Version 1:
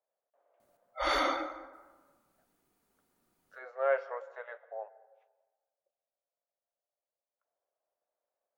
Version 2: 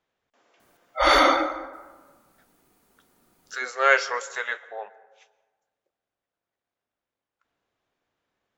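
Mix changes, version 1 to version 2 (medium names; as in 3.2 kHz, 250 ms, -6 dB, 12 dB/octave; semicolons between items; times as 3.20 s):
speech: remove ladder band-pass 660 Hz, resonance 65%; background +12.0 dB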